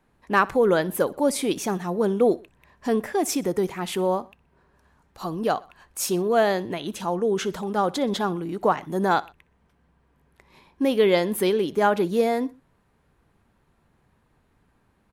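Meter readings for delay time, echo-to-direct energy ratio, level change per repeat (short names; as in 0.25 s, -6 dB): 62 ms, -21.0 dB, -6.0 dB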